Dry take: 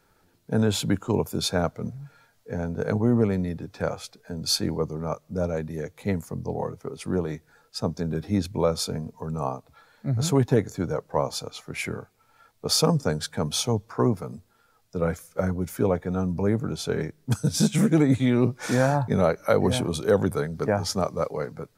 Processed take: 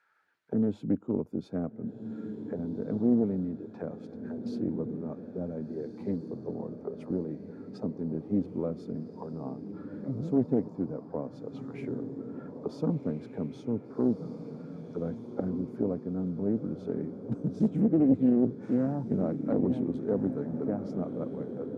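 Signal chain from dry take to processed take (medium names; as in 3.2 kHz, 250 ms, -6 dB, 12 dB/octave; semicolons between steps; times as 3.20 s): auto-wah 260–1700 Hz, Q 2.4, down, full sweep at -25.5 dBFS; echo that smears into a reverb 1544 ms, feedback 45%, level -9 dB; loudspeaker Doppler distortion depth 0.33 ms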